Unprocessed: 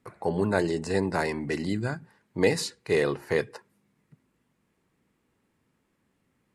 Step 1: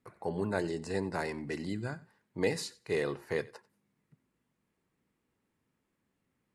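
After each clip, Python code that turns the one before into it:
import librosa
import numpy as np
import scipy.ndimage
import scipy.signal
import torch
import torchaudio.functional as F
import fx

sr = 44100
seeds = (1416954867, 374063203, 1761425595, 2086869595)

y = fx.echo_thinned(x, sr, ms=92, feedback_pct=17, hz=420.0, wet_db=-20.5)
y = F.gain(torch.from_numpy(y), -7.5).numpy()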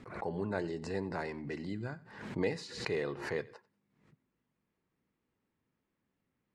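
y = fx.air_absorb(x, sr, metres=100.0)
y = fx.pre_swell(y, sr, db_per_s=74.0)
y = F.gain(torch.from_numpy(y), -3.0).numpy()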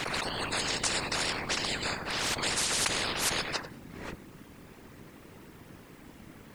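y = fx.whisperise(x, sr, seeds[0])
y = fx.spectral_comp(y, sr, ratio=10.0)
y = F.gain(torch.from_numpy(y), 5.0).numpy()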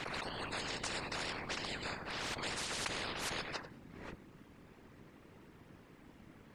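y = fx.high_shelf(x, sr, hz=6500.0, db=-11.5)
y = F.gain(torch.from_numpy(y), -7.5).numpy()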